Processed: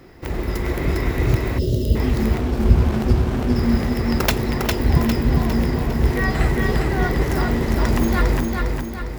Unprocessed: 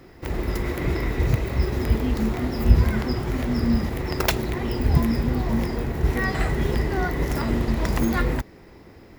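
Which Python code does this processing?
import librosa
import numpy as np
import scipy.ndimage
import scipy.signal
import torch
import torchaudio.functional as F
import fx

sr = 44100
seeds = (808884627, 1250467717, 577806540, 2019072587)

y = fx.echo_feedback(x, sr, ms=404, feedback_pct=48, wet_db=-3.5)
y = fx.spec_box(y, sr, start_s=1.59, length_s=0.37, low_hz=660.0, high_hz=2700.0, gain_db=-23)
y = fx.running_max(y, sr, window=17, at=(2.38, 3.56))
y = F.gain(torch.from_numpy(y), 2.0).numpy()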